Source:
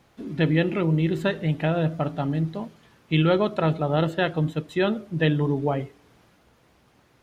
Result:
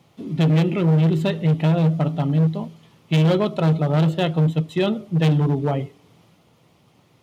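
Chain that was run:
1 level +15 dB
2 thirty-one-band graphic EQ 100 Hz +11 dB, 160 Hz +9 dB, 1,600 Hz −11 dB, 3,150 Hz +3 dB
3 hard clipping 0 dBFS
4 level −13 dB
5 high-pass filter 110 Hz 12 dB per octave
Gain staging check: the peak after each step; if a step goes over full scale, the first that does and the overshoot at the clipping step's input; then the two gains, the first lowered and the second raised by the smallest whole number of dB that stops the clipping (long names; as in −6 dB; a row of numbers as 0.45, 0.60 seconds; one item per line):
+5.5, +10.0, 0.0, −13.0, −6.5 dBFS
step 1, 10.0 dB
step 1 +5 dB, step 4 −3 dB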